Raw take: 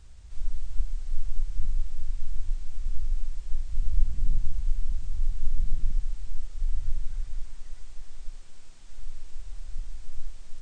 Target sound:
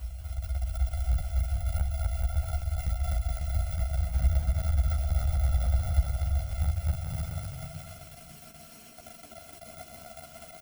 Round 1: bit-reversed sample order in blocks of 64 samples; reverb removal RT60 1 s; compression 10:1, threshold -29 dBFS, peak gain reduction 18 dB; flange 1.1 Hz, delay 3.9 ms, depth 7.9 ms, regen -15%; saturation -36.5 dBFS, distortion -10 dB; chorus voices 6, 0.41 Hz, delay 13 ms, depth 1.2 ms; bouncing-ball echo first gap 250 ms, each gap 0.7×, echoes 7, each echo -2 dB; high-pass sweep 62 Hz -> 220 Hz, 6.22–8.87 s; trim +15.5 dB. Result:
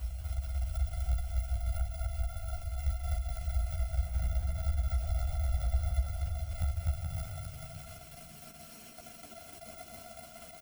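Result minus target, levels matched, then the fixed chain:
compression: peak gain reduction +8 dB
bit-reversed sample order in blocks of 64 samples; reverb removal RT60 1 s; compression 10:1, threshold -20 dBFS, peak gain reduction 10 dB; flange 1.1 Hz, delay 3.9 ms, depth 7.9 ms, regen -15%; saturation -36.5 dBFS, distortion -5 dB; chorus voices 6, 0.41 Hz, delay 13 ms, depth 1.2 ms; bouncing-ball echo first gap 250 ms, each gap 0.7×, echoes 7, each echo -2 dB; high-pass sweep 62 Hz -> 220 Hz, 6.22–8.87 s; trim +15.5 dB

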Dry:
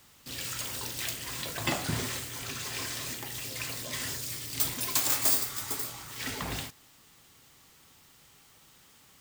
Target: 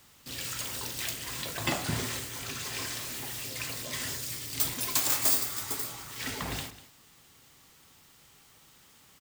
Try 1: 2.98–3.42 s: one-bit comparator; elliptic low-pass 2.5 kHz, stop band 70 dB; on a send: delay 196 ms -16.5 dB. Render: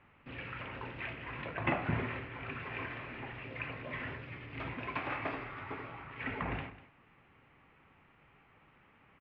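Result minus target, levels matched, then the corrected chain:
2 kHz band +8.0 dB
2.98–3.42 s: one-bit comparator; on a send: delay 196 ms -16.5 dB

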